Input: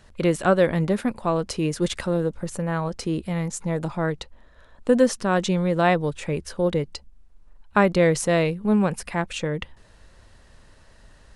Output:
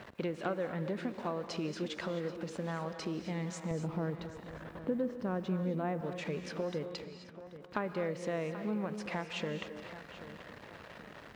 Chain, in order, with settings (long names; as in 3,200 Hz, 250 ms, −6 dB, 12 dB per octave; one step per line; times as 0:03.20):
converter with a step at zero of −34 dBFS
low-pass that shuts in the quiet parts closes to 2,200 Hz, open at −15.5 dBFS
high-pass filter 160 Hz 12 dB per octave
treble cut that deepens with the level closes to 2,400 Hz, closed at −16 dBFS
0:03.71–0:06.01: spectral tilt −3 dB per octave
downward compressor 3 to 1, threshold −29 dBFS, peak gain reduction 15.5 dB
bit reduction 11 bits
feedback echo with a low-pass in the loop 783 ms, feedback 40%, low-pass 4,700 Hz, level −13.5 dB
reverb whose tail is shaped and stops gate 290 ms rising, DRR 8.5 dB
level −6.5 dB